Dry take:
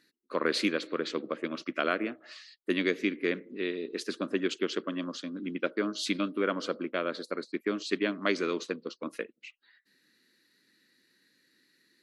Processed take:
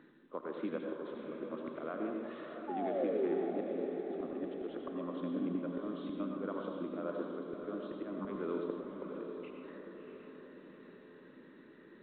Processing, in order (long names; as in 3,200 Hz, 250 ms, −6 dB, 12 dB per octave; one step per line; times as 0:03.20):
high-pass filter 85 Hz 24 dB per octave
sound drawn into the spectrogram fall, 0:02.67–0:03.35, 320–880 Hz −30 dBFS
volume swells 550 ms
downward compressor 3 to 1, threshold −54 dBFS, peak gain reduction 23 dB
high shelf with overshoot 1,500 Hz −13.5 dB, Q 1.5
feedback delay with all-pass diffusion 654 ms, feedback 53%, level −6.5 dB
on a send at −2.5 dB: convolution reverb RT60 0.95 s, pre-delay 78 ms
on the sum: level +13 dB
mu-law 64 kbit/s 8,000 Hz